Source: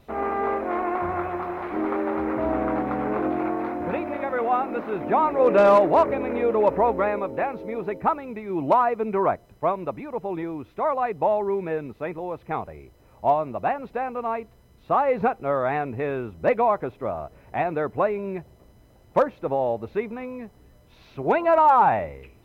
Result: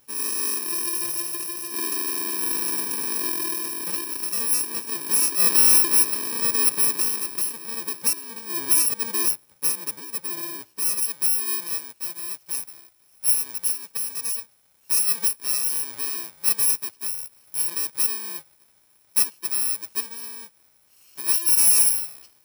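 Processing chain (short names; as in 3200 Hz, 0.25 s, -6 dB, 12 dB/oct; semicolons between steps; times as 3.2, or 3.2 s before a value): FFT order left unsorted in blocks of 64 samples; HPF 690 Hz 6 dB/oct, from 11 s 1500 Hz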